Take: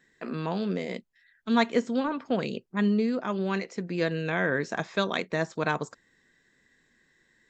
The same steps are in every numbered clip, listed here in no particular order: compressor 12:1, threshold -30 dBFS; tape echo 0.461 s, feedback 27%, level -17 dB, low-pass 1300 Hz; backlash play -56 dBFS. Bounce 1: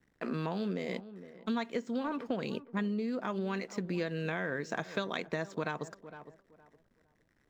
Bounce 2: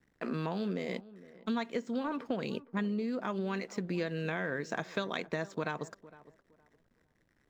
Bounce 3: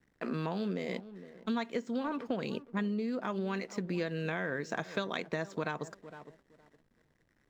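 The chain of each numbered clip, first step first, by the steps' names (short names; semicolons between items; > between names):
backlash > tape echo > compressor; backlash > compressor > tape echo; tape echo > backlash > compressor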